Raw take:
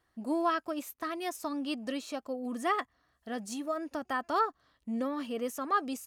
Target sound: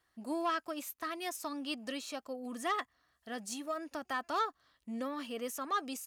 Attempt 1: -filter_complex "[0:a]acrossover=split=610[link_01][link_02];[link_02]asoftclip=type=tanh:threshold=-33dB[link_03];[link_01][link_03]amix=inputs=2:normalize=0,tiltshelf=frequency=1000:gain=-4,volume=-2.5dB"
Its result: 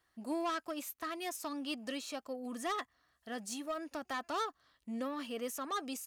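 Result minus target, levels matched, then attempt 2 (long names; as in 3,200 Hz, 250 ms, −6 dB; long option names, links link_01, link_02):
soft clipping: distortion +7 dB
-filter_complex "[0:a]acrossover=split=610[link_01][link_02];[link_02]asoftclip=type=tanh:threshold=-25.5dB[link_03];[link_01][link_03]amix=inputs=2:normalize=0,tiltshelf=frequency=1000:gain=-4,volume=-2.5dB"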